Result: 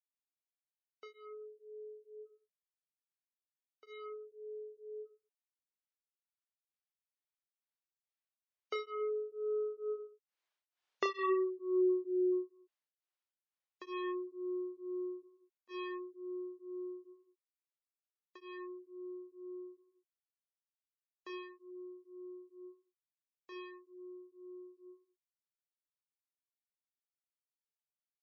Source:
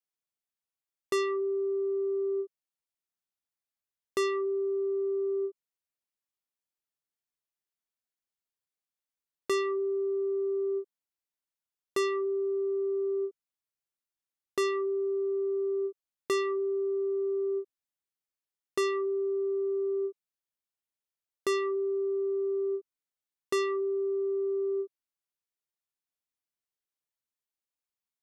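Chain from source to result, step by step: Doppler pass-by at 11.03 s, 28 m/s, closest 14 m; compression 2:1, threshold -41 dBFS, peak gain reduction 8 dB; band-pass 520–4000 Hz; reverse bouncing-ball echo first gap 30 ms, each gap 1.2×, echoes 5; spectral gate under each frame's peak -30 dB strong; tremolo of two beating tones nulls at 2.2 Hz; trim +11.5 dB

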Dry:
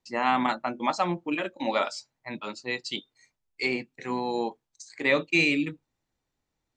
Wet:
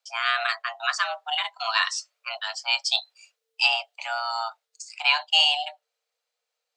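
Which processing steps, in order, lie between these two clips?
frequency shift +450 Hz; bass shelf 460 Hz +6 dB; gain riding within 3 dB 2 s; ten-band graphic EQ 500 Hz -12 dB, 1 kHz -6 dB, 4 kHz +5 dB; trim +4 dB

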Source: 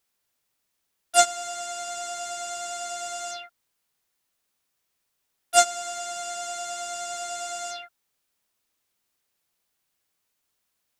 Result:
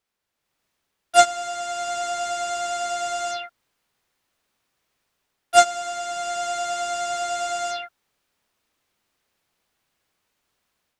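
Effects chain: treble shelf 5.4 kHz -12 dB; level rider gain up to 8.5 dB

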